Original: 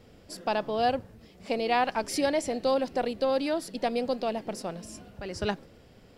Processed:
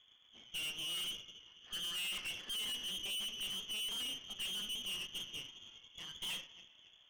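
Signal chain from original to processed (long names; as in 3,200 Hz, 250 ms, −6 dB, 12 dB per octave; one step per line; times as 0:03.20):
pitch glide at a constant tempo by −3.5 semitones ending unshifted
dynamic equaliser 840 Hz, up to +4 dB, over −38 dBFS, Q 1.2
on a send: feedback echo with a low-pass in the loop 240 ms, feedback 65%, low-pass 1,100 Hz, level −21 dB
on the sum: coupled-rooms reverb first 0.47 s, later 3.4 s, from −22 dB, DRR 9 dB
speed change −13%
voice inversion scrambler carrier 3,400 Hz
high-pass filter 240 Hz 24 dB per octave
tube saturation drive 37 dB, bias 0.7
expander for the loud parts 1.5 to 1, over −50 dBFS
level −1.5 dB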